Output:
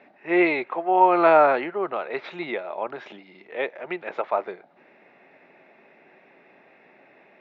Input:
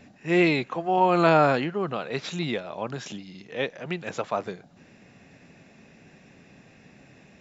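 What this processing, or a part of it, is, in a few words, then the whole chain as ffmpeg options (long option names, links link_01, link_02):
phone earpiece: -af "highpass=370,equalizer=frequency=370:width_type=q:width=4:gain=7,equalizer=frequency=620:width_type=q:width=4:gain=6,equalizer=frequency=880:width_type=q:width=4:gain=7,equalizer=frequency=1300:width_type=q:width=4:gain=4,equalizer=frequency=2100:width_type=q:width=4:gain=6,equalizer=frequency=3000:width_type=q:width=4:gain=-4,lowpass=frequency=3300:width=0.5412,lowpass=frequency=3300:width=1.3066,volume=-1.5dB"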